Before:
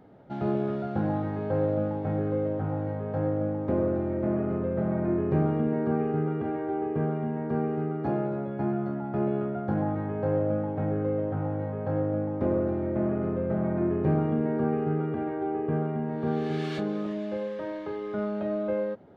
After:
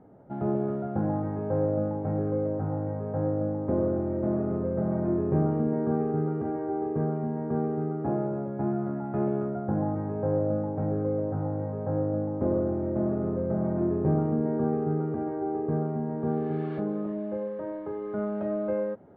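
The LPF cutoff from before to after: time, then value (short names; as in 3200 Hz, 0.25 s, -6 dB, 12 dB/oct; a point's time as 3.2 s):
8.54 s 1200 Hz
9.17 s 1900 Hz
9.71 s 1100 Hz
17.87 s 1100 Hz
18.37 s 1700 Hz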